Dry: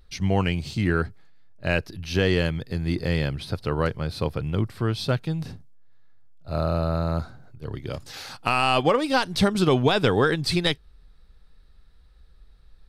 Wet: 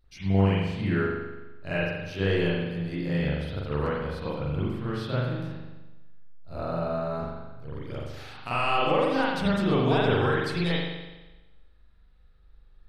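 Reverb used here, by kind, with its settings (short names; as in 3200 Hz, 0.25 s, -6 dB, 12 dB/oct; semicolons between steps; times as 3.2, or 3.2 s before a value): spring tank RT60 1.1 s, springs 41 ms, chirp 70 ms, DRR -10 dB; gain -13.5 dB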